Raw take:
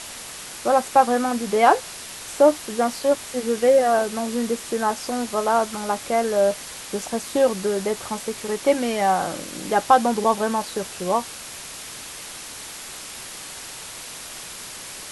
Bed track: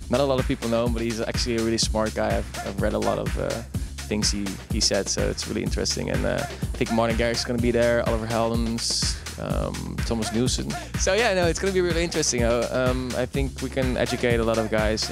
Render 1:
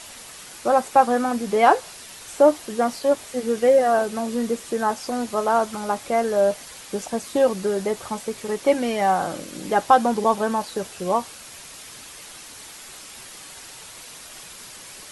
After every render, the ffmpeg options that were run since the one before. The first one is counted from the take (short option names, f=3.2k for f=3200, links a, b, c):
-af "afftdn=nr=6:nf=-37"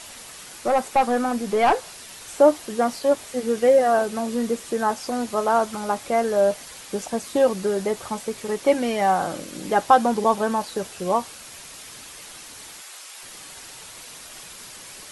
-filter_complex "[0:a]asettb=1/sr,asplit=3[a][b][c];[a]atrim=end=0.554[d];[b]atrim=start=0.55:end=2.11,asetpts=PTS-STARTPTS,afade=t=in:d=0.004:c=qsin,afade=t=out:st=1.556:d=0.004:c=qsin,aeval=exprs='(tanh(3.55*val(0)+0.15)-tanh(0.15))/3.55':c=same[e];[c]atrim=start=2.106[f];[d][e]acrossfade=d=0.004:c1=hsin:c2=qsin[g];[g][f]acrossfade=d=0.004:c1=qsin:c2=hsin,asettb=1/sr,asplit=3[h][i][j];[h]atrim=end=12.814[k];[i]atrim=start=12.81:end=13.23,asetpts=PTS-STARTPTS,afade=t=in:d=0.004:c=qsin,afade=t=out:st=0.416:d=0.004:c=qsin,highpass=610[l];[j]atrim=start=13.226[m];[k][l]acrossfade=d=0.004:c1=hsin:c2=qsin[n];[n][m]acrossfade=d=0.004:c1=qsin:c2=hsin"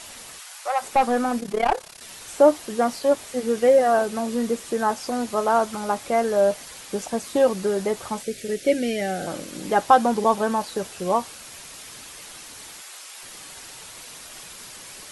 -filter_complex "[0:a]asplit=3[a][b][c];[a]afade=t=out:st=0.38:d=0.02[d];[b]highpass=f=690:w=0.5412,highpass=f=690:w=1.3066,afade=t=in:st=0.38:d=0.02,afade=t=out:st=0.81:d=0.02[e];[c]afade=t=in:st=0.81:d=0.02[f];[d][e][f]amix=inputs=3:normalize=0,asettb=1/sr,asplit=3[g][h][i];[g]atrim=end=1.404[j];[h]atrim=start=1.4:end=2.01,asetpts=PTS-STARTPTS,afade=t=in:d=0.004:c=qsin,afade=t=out:st=0.606:d=0.004:c=qsin,tremolo=f=34:d=0.857[k];[i]atrim=start=2.006[l];[j][k]acrossfade=d=0.004:c1=hsin:c2=qsin[m];[m][l]acrossfade=d=0.004:c1=qsin:c2=hsin,asplit=3[n][o][p];[n]afade=t=out:st=8.22:d=0.02[q];[o]asuperstop=centerf=1000:order=4:qfactor=0.96,afade=t=in:st=8.22:d=0.02,afade=t=out:st=9.26:d=0.02[r];[p]afade=t=in:st=9.26:d=0.02[s];[q][r][s]amix=inputs=3:normalize=0"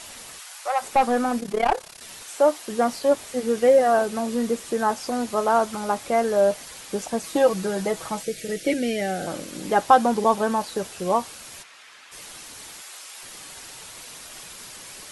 -filter_complex "[0:a]asettb=1/sr,asplit=3[a][b][c];[a]atrim=end=2.234[d];[b]atrim=start=2.23:end=2.68,asetpts=PTS-STARTPTS,afade=t=in:d=0.004:c=qsin,afade=t=out:st=0.446:d=0.004:c=qsin,highpass=f=620:p=1[e];[c]atrim=start=2.676[f];[d][e]acrossfade=d=0.004:c1=hsin:c2=qsin[g];[g][f]acrossfade=d=0.004:c1=qsin:c2=hsin,asettb=1/sr,asplit=3[h][i][j];[h]atrim=end=7.234[k];[i]atrim=start=7.23:end=8.74,asetpts=PTS-STARTPTS,afade=t=in:d=0.004:c=qsin,afade=t=out:st=1.506:d=0.004:c=qsin,aecho=1:1:6.2:0.59,atrim=end_sample=66591[l];[j]atrim=start=8.736[m];[k][l]acrossfade=d=0.004:c1=hsin:c2=qsin[n];[n][m]acrossfade=d=0.004:c1=qsin:c2=hsin,asplit=3[o][p][q];[o]afade=t=out:st=11.62:d=0.02[r];[p]bandpass=f=1.7k:t=q:w=0.97,afade=t=in:st=11.62:d=0.02,afade=t=out:st=12.11:d=0.02[s];[q]afade=t=in:st=12.11:d=0.02[t];[r][s][t]amix=inputs=3:normalize=0"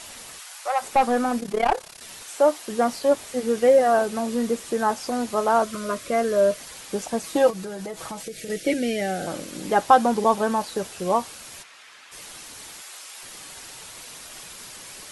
-filter_complex "[0:a]asettb=1/sr,asplit=3[a][b][c];[a]atrim=end=5.624[d];[b]atrim=start=5.62:end=6.6,asetpts=PTS-STARTPTS,afade=t=in:d=0.004:c=qsin,afade=t=out:st=0.976:d=0.004:c=qsin,asuperstop=centerf=820:order=8:qfactor=3.1[e];[c]atrim=start=6.596[f];[d][e]acrossfade=d=0.004:c1=hsin:c2=qsin[g];[g][f]acrossfade=d=0.004:c1=qsin:c2=hsin,asettb=1/sr,asplit=3[h][i][j];[h]atrim=end=7.504[k];[i]atrim=start=7.5:end=8.5,asetpts=PTS-STARTPTS,afade=t=in:d=0.004:c=qsin,afade=t=out:st=0.996:d=0.004:c=qsin,acompressor=threshold=-30dB:ratio=6:attack=3.2:release=140:knee=1:detection=peak[l];[j]atrim=start=8.496[m];[k][l]acrossfade=d=0.004:c1=hsin:c2=qsin[n];[n][m]acrossfade=d=0.004:c1=qsin:c2=hsin"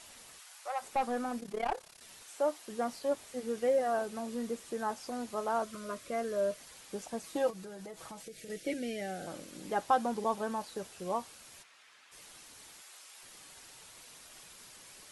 -af "volume=-12.5dB"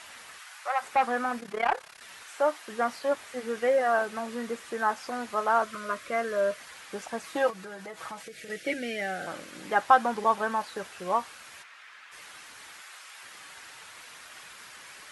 -af "highpass=45,equalizer=f=1.6k:w=0.6:g=13.5"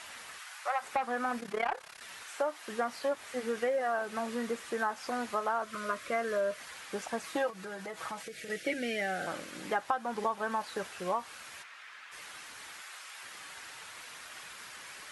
-af "acompressor=threshold=-28dB:ratio=6"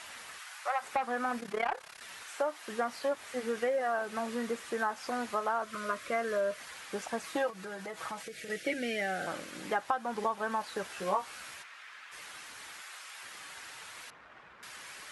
-filter_complex "[0:a]asettb=1/sr,asplit=3[a][b][c];[a]atrim=end=10.884[d];[b]atrim=start=10.88:end=11.54,asetpts=PTS-STARTPTS,afade=t=in:d=0.004:c=qsin,afade=t=out:st=0.656:d=0.004:c=qsin,asplit=2[e][f];[f]adelay=15,volume=-3dB[g];[e][g]amix=inputs=2:normalize=0,atrim=end_sample=29106[h];[c]atrim=start=11.536[i];[d][h]acrossfade=d=0.004:c1=hsin:c2=qsin[j];[j][i]acrossfade=d=0.004:c1=qsin:c2=hsin,asettb=1/sr,asplit=3[k][l][m];[k]atrim=end=14.104[n];[l]atrim=start=14.1:end=14.63,asetpts=PTS-STARTPTS,afade=t=in:d=0.004:c=qsin,afade=t=out:st=0.526:d=0.004:c=qsin,adynamicsmooth=sensitivity=2:basefreq=1.4k[o];[m]atrim=start=14.626[p];[n][o]acrossfade=d=0.004:c1=hsin:c2=qsin[q];[q][p]acrossfade=d=0.004:c1=qsin:c2=hsin"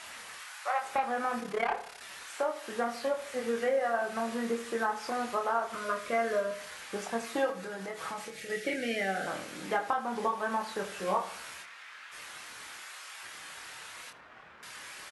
-filter_complex "[0:a]asplit=2[a][b];[b]adelay=26,volume=-4.5dB[c];[a][c]amix=inputs=2:normalize=0,asplit=2[d][e];[e]adelay=77,lowpass=f=2k:p=1,volume=-11.5dB,asplit=2[f][g];[g]adelay=77,lowpass=f=2k:p=1,volume=0.46,asplit=2[h][i];[i]adelay=77,lowpass=f=2k:p=1,volume=0.46,asplit=2[j][k];[k]adelay=77,lowpass=f=2k:p=1,volume=0.46,asplit=2[l][m];[m]adelay=77,lowpass=f=2k:p=1,volume=0.46[n];[d][f][h][j][l][n]amix=inputs=6:normalize=0"